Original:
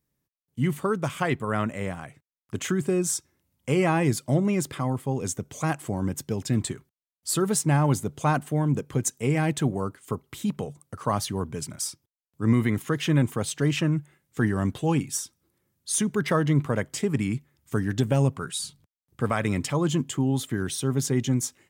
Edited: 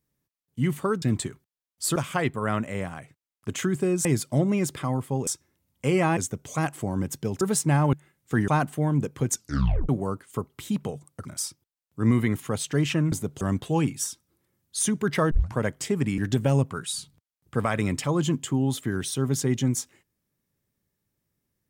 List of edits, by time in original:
0:03.11–0:04.01: move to 0:05.23
0:06.47–0:07.41: move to 0:01.02
0:07.93–0:08.22: swap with 0:13.99–0:14.54
0:09.06: tape stop 0.57 s
0:10.99–0:11.67: remove
0:12.89–0:13.34: remove
0:16.44: tape start 0.26 s
0:17.31–0:17.84: remove

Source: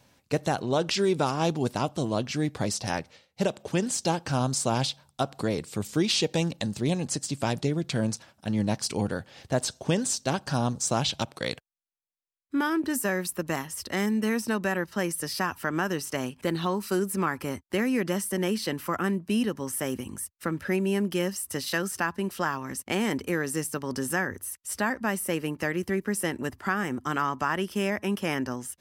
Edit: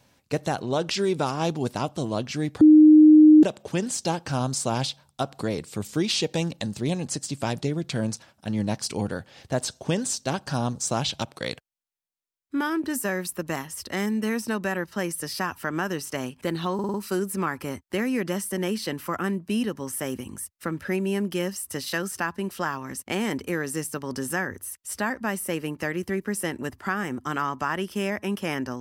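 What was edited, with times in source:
0:02.61–0:03.43: beep over 307 Hz −8.5 dBFS
0:16.74: stutter 0.05 s, 5 plays

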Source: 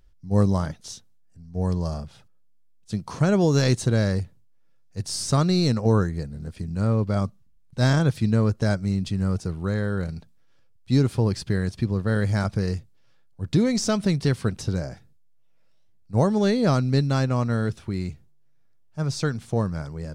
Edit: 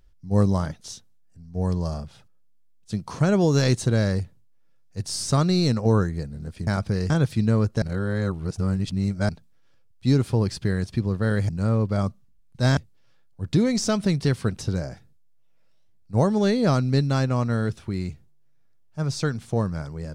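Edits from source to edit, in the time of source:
0:06.67–0:07.95: swap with 0:12.34–0:12.77
0:08.67–0:10.14: reverse

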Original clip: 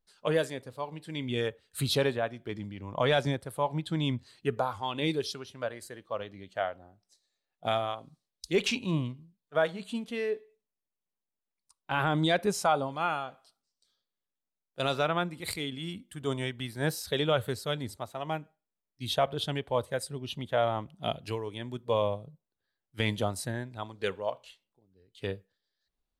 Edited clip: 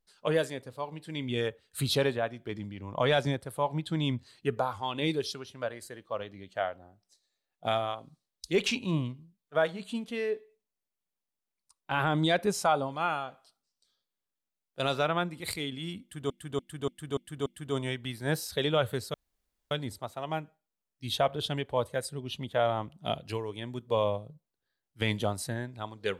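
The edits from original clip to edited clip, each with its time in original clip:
0:16.01–0:16.30: repeat, 6 plays
0:17.69: splice in room tone 0.57 s

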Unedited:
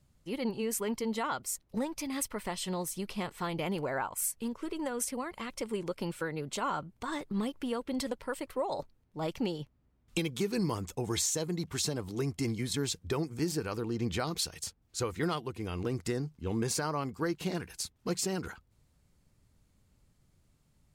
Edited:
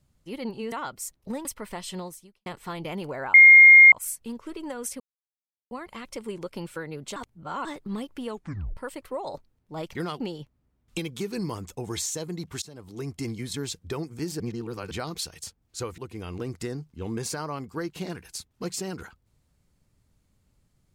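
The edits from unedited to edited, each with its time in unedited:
0:00.72–0:01.19: remove
0:01.92–0:02.19: remove
0:02.73–0:03.20: fade out quadratic
0:04.08: insert tone 2,130 Hz −7.5 dBFS 0.58 s
0:05.16: splice in silence 0.71 s
0:06.61–0:07.10: reverse
0:07.73: tape stop 0.49 s
0:11.82–0:12.34: fade in, from −19 dB
0:13.60–0:14.11: reverse
0:15.18–0:15.43: move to 0:09.40

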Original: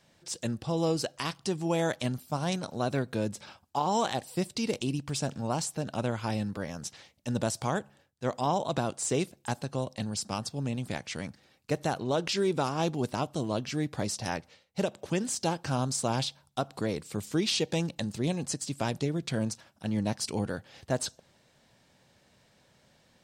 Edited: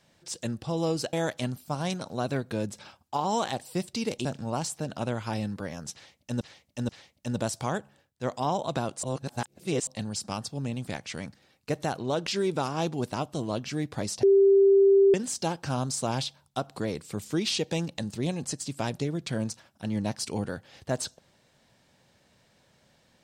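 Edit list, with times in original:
0:01.13–0:01.75: remove
0:04.87–0:05.22: remove
0:06.90–0:07.38: repeat, 3 plays
0:09.04–0:09.88: reverse
0:14.24–0:15.15: beep over 393 Hz −15 dBFS

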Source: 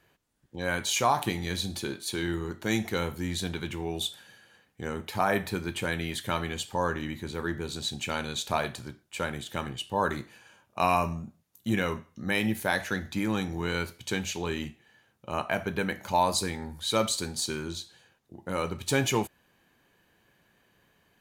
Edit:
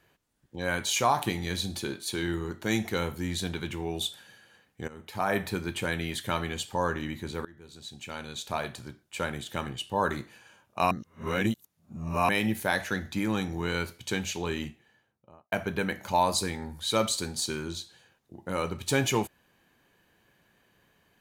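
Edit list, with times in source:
0:04.88–0:05.41: fade in, from −16.5 dB
0:07.45–0:09.22: fade in, from −23.5 dB
0:10.91–0:12.29: reverse
0:14.64–0:15.52: fade out and dull

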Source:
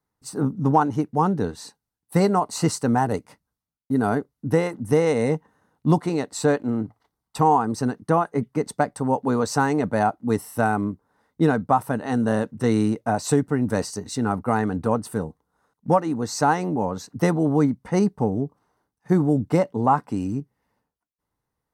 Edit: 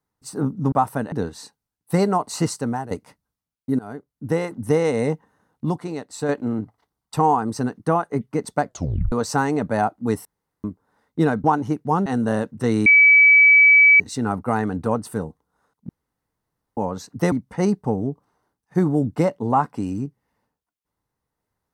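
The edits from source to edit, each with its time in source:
0:00.72–0:01.34: swap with 0:11.66–0:12.06
0:02.48–0:03.13: fade out equal-power, to −13 dB
0:04.01–0:04.73: fade in, from −20.5 dB
0:05.87–0:06.51: clip gain −5.5 dB
0:08.87: tape stop 0.47 s
0:10.47–0:10.86: fill with room tone
0:12.86–0:14.00: beep over 2,290 Hz −8.5 dBFS
0:15.89–0:16.77: fill with room tone
0:17.32–0:17.66: remove

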